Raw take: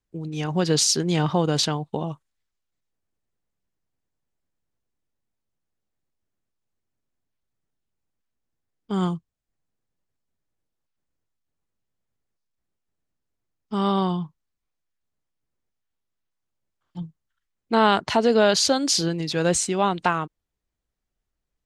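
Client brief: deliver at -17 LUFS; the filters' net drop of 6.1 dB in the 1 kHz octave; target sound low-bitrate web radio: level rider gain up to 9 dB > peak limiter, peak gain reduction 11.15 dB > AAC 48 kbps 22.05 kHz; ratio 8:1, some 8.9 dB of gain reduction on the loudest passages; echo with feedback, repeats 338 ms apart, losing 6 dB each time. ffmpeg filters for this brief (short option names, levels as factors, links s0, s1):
-af "equalizer=f=1000:t=o:g=-8,acompressor=threshold=0.0562:ratio=8,aecho=1:1:338|676|1014|1352|1690|2028:0.501|0.251|0.125|0.0626|0.0313|0.0157,dynaudnorm=m=2.82,alimiter=limit=0.075:level=0:latency=1,volume=5.96" -ar 22050 -c:a aac -b:a 48k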